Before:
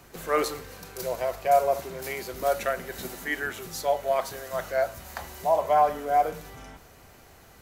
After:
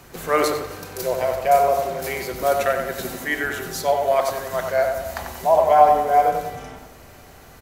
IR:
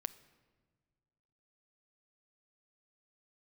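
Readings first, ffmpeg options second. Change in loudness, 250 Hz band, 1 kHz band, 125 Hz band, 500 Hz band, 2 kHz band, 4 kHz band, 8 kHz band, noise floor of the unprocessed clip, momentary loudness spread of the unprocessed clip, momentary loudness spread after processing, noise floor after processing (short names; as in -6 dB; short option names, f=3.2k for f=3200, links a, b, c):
+6.5 dB, +7.0 dB, +7.0 dB, +7.0 dB, +7.0 dB, +6.5 dB, +6.0 dB, +5.5 dB, -53 dBFS, 15 LU, 13 LU, -45 dBFS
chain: -filter_complex "[0:a]asplit=2[a][b];[b]adelay=93,lowpass=f=2k:p=1,volume=-4.5dB,asplit=2[c][d];[d]adelay=93,lowpass=f=2k:p=1,volume=0.52,asplit=2[e][f];[f]adelay=93,lowpass=f=2k:p=1,volume=0.52,asplit=2[g][h];[h]adelay=93,lowpass=f=2k:p=1,volume=0.52,asplit=2[i][j];[j]adelay=93,lowpass=f=2k:p=1,volume=0.52,asplit=2[k][l];[l]adelay=93,lowpass=f=2k:p=1,volume=0.52,asplit=2[m][n];[n]adelay=93,lowpass=f=2k:p=1,volume=0.52[o];[a][c][e][g][i][k][m][o]amix=inputs=8:normalize=0,asplit=2[p][q];[1:a]atrim=start_sample=2205,asetrate=38367,aresample=44100[r];[q][r]afir=irnorm=-1:irlink=0,volume=13.5dB[s];[p][s]amix=inputs=2:normalize=0,volume=-8.5dB"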